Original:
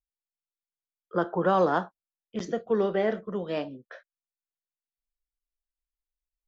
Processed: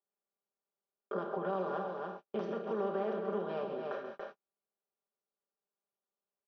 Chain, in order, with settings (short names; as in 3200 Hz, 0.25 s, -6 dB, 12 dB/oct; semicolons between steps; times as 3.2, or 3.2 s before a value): per-bin compression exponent 0.4; LPF 4500 Hz 24 dB/oct; notch 2000 Hz, Q 7; loudspeakers at several distances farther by 45 m -11 dB, 97 m -9 dB; compressor 3:1, threshold -33 dBFS, peak gain reduction 13.5 dB; HPF 190 Hz 12 dB/oct; high shelf 2100 Hz -5 dB; gate -43 dBFS, range -44 dB; comb 5 ms, depth 97%; gain -6 dB